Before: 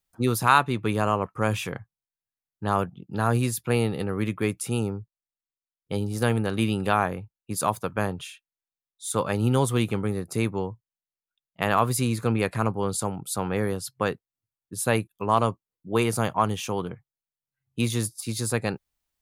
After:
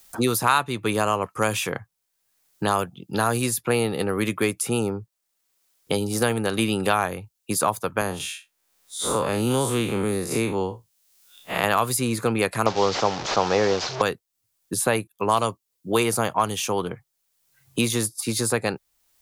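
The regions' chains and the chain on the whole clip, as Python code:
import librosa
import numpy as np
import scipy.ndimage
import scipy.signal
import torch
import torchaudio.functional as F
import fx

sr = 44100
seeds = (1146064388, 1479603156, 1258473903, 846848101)

y = fx.chain(x, sr, fx.spec_blur(span_ms=99.0),
    fx.band_squash(depth_pct=40), at=(8.01, 11.64))
y = fx.chain(y, sr, fx.delta_mod(bps=32000, step_db=-32.5),
    fx.peak_eq(hz=700.0, db=9.5, octaves=2.3), at=(12.66, 14.02))
y = fx.bass_treble(y, sr, bass_db=-7, treble_db=6)
y = fx.band_squash(y, sr, depth_pct=70)
y = y * librosa.db_to_amplitude(3.0)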